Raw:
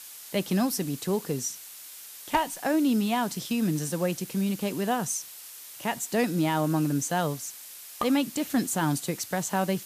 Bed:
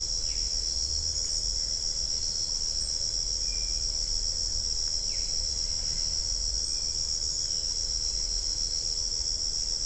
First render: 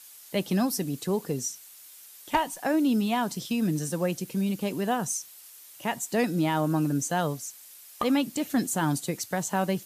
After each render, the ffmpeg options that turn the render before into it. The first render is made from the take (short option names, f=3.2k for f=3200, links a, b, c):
-af "afftdn=nr=7:nf=-45"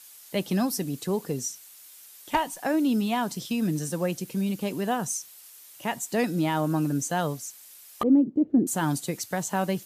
-filter_complex "[0:a]asettb=1/sr,asplit=3[a][b][c];[a]atrim=end=8.034[d];[b]atrim=start=8.03:end=8.67,asetpts=PTS-STARTPTS,afade=t=in:d=0.004:c=qsin,afade=t=out:st=0.636:d=0.004:c=qsin,lowpass=f=370:t=q:w=2.9[e];[c]atrim=start=8.666[f];[d][e]acrossfade=d=0.004:c1=hsin:c2=qsin[g];[g][f]acrossfade=d=0.004:c1=qsin:c2=hsin"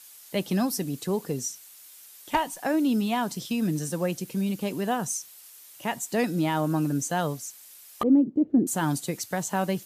-af anull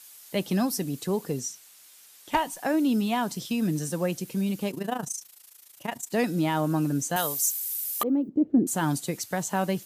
-filter_complex "[0:a]asettb=1/sr,asplit=3[a][b][c];[a]atrim=end=1.404[d];[b]atrim=start=1.4:end=2.33,asetpts=PTS-STARTPTS,afade=t=in:d=0.004:c=qsin,afade=t=out:st=0.926:d=0.004:c=qsin,highshelf=f=11k:g=-8.5[e];[c]atrim=start=2.326[f];[d][e]acrossfade=d=0.004:c1=hsin:c2=qsin[g];[g][f]acrossfade=d=0.004:c1=qsin:c2=hsin,asplit=3[h][i][j];[h]afade=t=out:st=4.7:d=0.02[k];[i]tremolo=f=27:d=0.824,afade=t=in:st=4.7:d=0.02,afade=t=out:st=6.12:d=0.02[l];[j]afade=t=in:st=6.12:d=0.02[m];[k][l][m]amix=inputs=3:normalize=0,asettb=1/sr,asplit=3[n][o][p];[n]atrim=end=7.164[q];[o]atrim=start=7.16:end=8.29,asetpts=PTS-STARTPTS,afade=t=in:d=0.004:c=qsin,afade=t=out:st=1.126:d=0.004:c=qsin,aemphasis=mode=production:type=riaa[r];[p]atrim=start=8.286[s];[q][r]acrossfade=d=0.004:c1=hsin:c2=qsin[t];[t][s]acrossfade=d=0.004:c1=qsin:c2=hsin"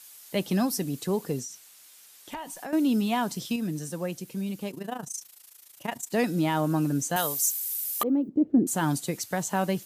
-filter_complex "[0:a]asettb=1/sr,asplit=3[a][b][c];[a]atrim=end=1.424[d];[b]atrim=start=1.42:end=2.73,asetpts=PTS-STARTPTS,afade=t=in:d=0.004:c=qsin,afade=t=out:st=1.306:d=0.004:c=qsin,acompressor=threshold=-35dB:ratio=4:attack=3.2:release=140:knee=1:detection=peak[e];[c]atrim=start=2.726[f];[d][e]acrossfade=d=0.004:c1=hsin:c2=qsin[g];[g][f]acrossfade=d=0.004:c1=qsin:c2=hsin,asplit=3[h][i][j];[h]atrim=end=3.562[k];[i]atrim=start=3.558:end=5.142,asetpts=PTS-STARTPTS,volume=-4.5dB[l];[j]atrim=start=5.138[m];[k][l]acrossfade=d=0.004:c1=hsin:c2=hsin[n];[n][m]acrossfade=d=0.004:c1=hsin:c2=hsin"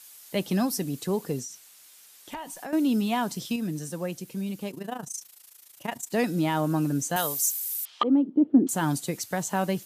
-filter_complex "[0:a]asettb=1/sr,asplit=3[a][b][c];[a]atrim=end=7.854[d];[b]atrim=start=7.85:end=8.69,asetpts=PTS-STARTPTS,afade=t=in:d=0.004:c=qsin,afade=t=out:st=0.836:d=0.004:c=qsin,highpass=190,equalizer=f=270:t=q:w=4:g=5,equalizer=f=920:t=q:w=4:g=6,equalizer=f=1.3k:t=q:w=4:g=5,equalizer=f=3.2k:t=q:w=4:g=9,lowpass=f=4.2k:w=0.5412,lowpass=f=4.2k:w=1.3066[e];[c]atrim=start=8.686[f];[d][e]acrossfade=d=0.004:c1=hsin:c2=qsin[g];[g][f]acrossfade=d=0.004:c1=qsin:c2=hsin"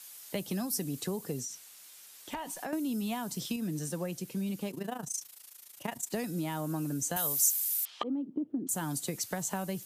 -filter_complex "[0:a]acrossover=split=140|6400[a][b][c];[a]alimiter=level_in=17.5dB:limit=-24dB:level=0:latency=1,volume=-17.5dB[d];[b]acompressor=threshold=-32dB:ratio=20[e];[d][e][c]amix=inputs=3:normalize=0"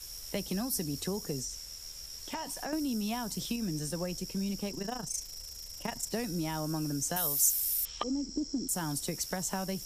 -filter_complex "[1:a]volume=-15.5dB[a];[0:a][a]amix=inputs=2:normalize=0"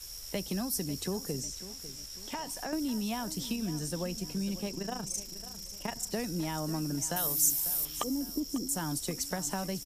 -af "aecho=1:1:547|1094|1641|2188:0.188|0.081|0.0348|0.015"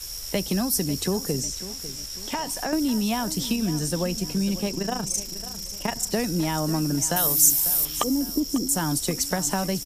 -af "volume=9dB"